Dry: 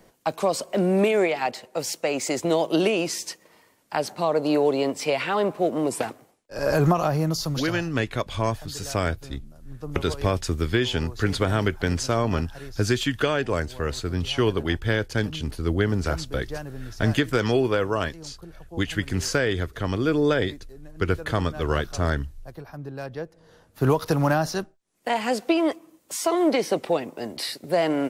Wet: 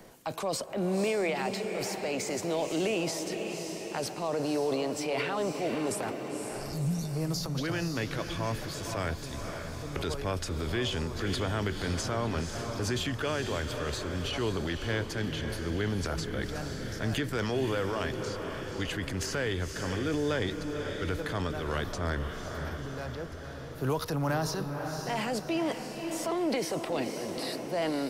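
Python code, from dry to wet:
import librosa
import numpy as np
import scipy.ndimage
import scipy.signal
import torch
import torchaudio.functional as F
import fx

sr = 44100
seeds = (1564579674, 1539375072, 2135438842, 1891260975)

p1 = fx.spec_erase(x, sr, start_s=6.25, length_s=0.91, low_hz=240.0, high_hz=3500.0)
p2 = fx.transient(p1, sr, attack_db=-5, sustain_db=7)
p3 = p2 + fx.echo_diffused(p2, sr, ms=518, feedback_pct=53, wet_db=-8, dry=0)
p4 = fx.band_squash(p3, sr, depth_pct=40)
y = F.gain(torch.from_numpy(p4), -8.0).numpy()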